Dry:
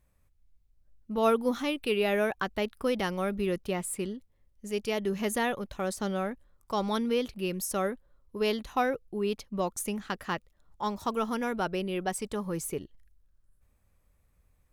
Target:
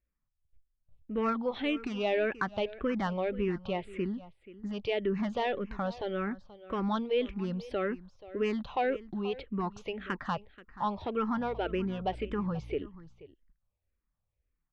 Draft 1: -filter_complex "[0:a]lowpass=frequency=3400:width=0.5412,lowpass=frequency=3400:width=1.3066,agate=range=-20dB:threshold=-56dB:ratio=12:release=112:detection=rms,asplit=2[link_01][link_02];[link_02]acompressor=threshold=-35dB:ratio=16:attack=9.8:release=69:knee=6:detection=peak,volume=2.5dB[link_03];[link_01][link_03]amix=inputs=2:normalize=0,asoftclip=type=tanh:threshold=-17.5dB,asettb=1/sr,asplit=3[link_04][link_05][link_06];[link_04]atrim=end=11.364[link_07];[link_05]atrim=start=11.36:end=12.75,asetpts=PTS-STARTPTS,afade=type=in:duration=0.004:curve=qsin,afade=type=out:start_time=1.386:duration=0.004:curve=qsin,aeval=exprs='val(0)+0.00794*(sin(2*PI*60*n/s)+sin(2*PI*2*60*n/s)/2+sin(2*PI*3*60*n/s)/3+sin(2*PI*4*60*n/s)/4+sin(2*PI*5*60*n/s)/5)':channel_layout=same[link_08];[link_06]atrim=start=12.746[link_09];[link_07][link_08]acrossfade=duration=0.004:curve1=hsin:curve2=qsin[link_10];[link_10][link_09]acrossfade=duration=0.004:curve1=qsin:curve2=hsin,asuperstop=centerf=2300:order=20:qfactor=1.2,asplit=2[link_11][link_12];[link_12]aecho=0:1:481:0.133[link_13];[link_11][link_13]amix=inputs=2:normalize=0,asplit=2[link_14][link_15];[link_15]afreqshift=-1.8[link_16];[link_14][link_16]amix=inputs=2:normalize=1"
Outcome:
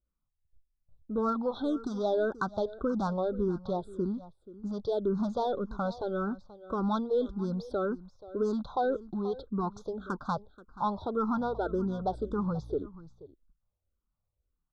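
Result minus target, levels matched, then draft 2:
2,000 Hz band −7.0 dB; downward compressor: peak gain reduction −6 dB
-filter_complex "[0:a]lowpass=frequency=3400:width=0.5412,lowpass=frequency=3400:width=1.3066,agate=range=-20dB:threshold=-56dB:ratio=12:release=112:detection=rms,asplit=2[link_01][link_02];[link_02]acompressor=threshold=-41.5dB:ratio=16:attack=9.8:release=69:knee=6:detection=peak,volume=2.5dB[link_03];[link_01][link_03]amix=inputs=2:normalize=0,asoftclip=type=tanh:threshold=-17.5dB,asettb=1/sr,asplit=3[link_04][link_05][link_06];[link_04]atrim=end=11.364[link_07];[link_05]atrim=start=11.36:end=12.75,asetpts=PTS-STARTPTS,afade=type=in:duration=0.004:curve=qsin,afade=type=out:start_time=1.386:duration=0.004:curve=qsin,aeval=exprs='val(0)+0.00794*(sin(2*PI*60*n/s)+sin(2*PI*2*60*n/s)/2+sin(2*PI*3*60*n/s)/3+sin(2*PI*4*60*n/s)/4+sin(2*PI*5*60*n/s)/5)':channel_layout=same[link_08];[link_06]atrim=start=12.746[link_09];[link_07][link_08]acrossfade=duration=0.004:curve1=hsin:curve2=qsin[link_10];[link_10][link_09]acrossfade=duration=0.004:curve1=qsin:curve2=hsin,asplit=2[link_11][link_12];[link_12]aecho=0:1:481:0.133[link_13];[link_11][link_13]amix=inputs=2:normalize=0,asplit=2[link_14][link_15];[link_15]afreqshift=-1.8[link_16];[link_14][link_16]amix=inputs=2:normalize=1"

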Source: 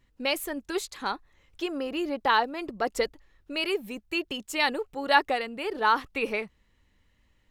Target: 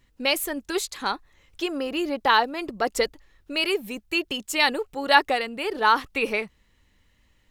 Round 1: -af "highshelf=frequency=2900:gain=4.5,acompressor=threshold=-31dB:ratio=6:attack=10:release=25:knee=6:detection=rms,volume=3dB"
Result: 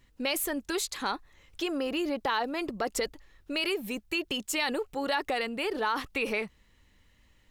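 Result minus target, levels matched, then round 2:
downward compressor: peak gain reduction +15 dB
-af "highshelf=frequency=2900:gain=4.5,volume=3dB"

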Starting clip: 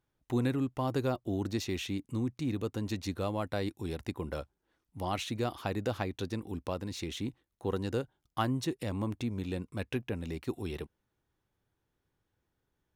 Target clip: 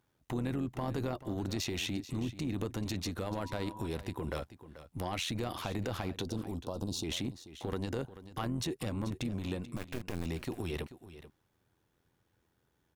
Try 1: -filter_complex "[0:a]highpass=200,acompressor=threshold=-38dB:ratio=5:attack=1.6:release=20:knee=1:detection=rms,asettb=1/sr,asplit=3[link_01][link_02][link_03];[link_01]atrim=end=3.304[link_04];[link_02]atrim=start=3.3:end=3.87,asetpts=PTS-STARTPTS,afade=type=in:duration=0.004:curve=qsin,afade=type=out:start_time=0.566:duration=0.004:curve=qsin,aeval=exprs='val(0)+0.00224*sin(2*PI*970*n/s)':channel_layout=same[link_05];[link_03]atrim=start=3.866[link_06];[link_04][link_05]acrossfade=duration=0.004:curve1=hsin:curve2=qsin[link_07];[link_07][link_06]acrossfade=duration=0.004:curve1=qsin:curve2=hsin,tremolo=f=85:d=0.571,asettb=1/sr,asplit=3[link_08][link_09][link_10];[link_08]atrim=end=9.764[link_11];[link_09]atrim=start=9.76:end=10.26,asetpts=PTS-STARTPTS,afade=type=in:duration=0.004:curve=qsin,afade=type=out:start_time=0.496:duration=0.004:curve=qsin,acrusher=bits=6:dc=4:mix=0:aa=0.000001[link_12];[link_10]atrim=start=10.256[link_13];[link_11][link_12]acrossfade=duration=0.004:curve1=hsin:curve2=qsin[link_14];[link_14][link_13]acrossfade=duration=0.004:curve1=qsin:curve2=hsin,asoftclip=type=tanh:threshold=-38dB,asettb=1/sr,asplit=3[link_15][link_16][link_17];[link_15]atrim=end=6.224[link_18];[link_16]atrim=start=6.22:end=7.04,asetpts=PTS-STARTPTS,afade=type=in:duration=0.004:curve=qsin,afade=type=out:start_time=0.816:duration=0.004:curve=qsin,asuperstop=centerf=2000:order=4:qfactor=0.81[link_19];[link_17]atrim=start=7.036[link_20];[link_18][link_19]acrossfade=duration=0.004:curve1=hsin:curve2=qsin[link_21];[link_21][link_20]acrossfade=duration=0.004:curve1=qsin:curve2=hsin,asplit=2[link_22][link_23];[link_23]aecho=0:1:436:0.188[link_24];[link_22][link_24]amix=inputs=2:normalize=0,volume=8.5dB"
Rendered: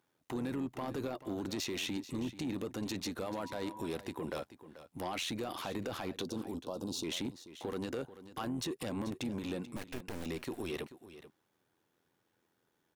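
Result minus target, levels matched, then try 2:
soft clipping: distortion +14 dB; 125 Hz band −6.0 dB
-filter_complex "[0:a]highpass=55,acompressor=threshold=-38dB:ratio=5:attack=1.6:release=20:knee=1:detection=rms,asettb=1/sr,asplit=3[link_01][link_02][link_03];[link_01]atrim=end=3.304[link_04];[link_02]atrim=start=3.3:end=3.87,asetpts=PTS-STARTPTS,afade=type=in:duration=0.004:curve=qsin,afade=type=out:start_time=0.566:duration=0.004:curve=qsin,aeval=exprs='val(0)+0.00224*sin(2*PI*970*n/s)':channel_layout=same[link_05];[link_03]atrim=start=3.866[link_06];[link_04][link_05]acrossfade=duration=0.004:curve1=hsin:curve2=qsin[link_07];[link_07][link_06]acrossfade=duration=0.004:curve1=qsin:curve2=hsin,tremolo=f=85:d=0.571,asettb=1/sr,asplit=3[link_08][link_09][link_10];[link_08]atrim=end=9.764[link_11];[link_09]atrim=start=9.76:end=10.26,asetpts=PTS-STARTPTS,afade=type=in:duration=0.004:curve=qsin,afade=type=out:start_time=0.496:duration=0.004:curve=qsin,acrusher=bits=6:dc=4:mix=0:aa=0.000001[link_12];[link_10]atrim=start=10.256[link_13];[link_11][link_12]acrossfade=duration=0.004:curve1=hsin:curve2=qsin[link_14];[link_14][link_13]acrossfade=duration=0.004:curve1=qsin:curve2=hsin,asoftclip=type=tanh:threshold=-28.5dB,asettb=1/sr,asplit=3[link_15][link_16][link_17];[link_15]atrim=end=6.224[link_18];[link_16]atrim=start=6.22:end=7.04,asetpts=PTS-STARTPTS,afade=type=in:duration=0.004:curve=qsin,afade=type=out:start_time=0.816:duration=0.004:curve=qsin,asuperstop=centerf=2000:order=4:qfactor=0.81[link_19];[link_17]atrim=start=7.036[link_20];[link_18][link_19]acrossfade=duration=0.004:curve1=hsin:curve2=qsin[link_21];[link_21][link_20]acrossfade=duration=0.004:curve1=qsin:curve2=hsin,asplit=2[link_22][link_23];[link_23]aecho=0:1:436:0.188[link_24];[link_22][link_24]amix=inputs=2:normalize=0,volume=8.5dB"

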